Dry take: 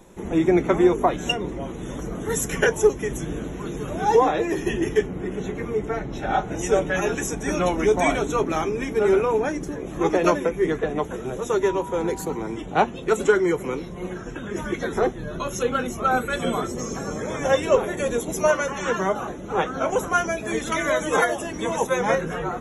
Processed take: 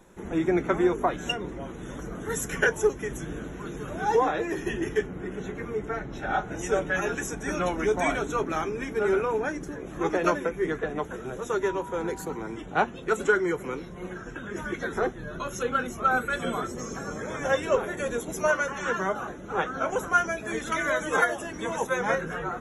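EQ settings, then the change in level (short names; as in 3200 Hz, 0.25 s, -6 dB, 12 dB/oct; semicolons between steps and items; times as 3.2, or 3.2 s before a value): bell 1500 Hz +7 dB 0.59 oct; -6.0 dB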